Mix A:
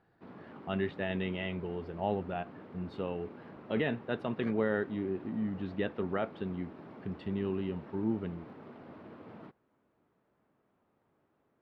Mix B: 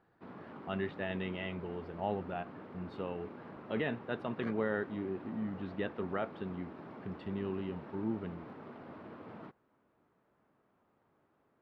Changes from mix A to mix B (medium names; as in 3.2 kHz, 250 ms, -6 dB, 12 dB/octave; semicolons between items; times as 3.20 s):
speech -4.0 dB; master: add peaking EQ 1.2 kHz +3 dB 1.5 oct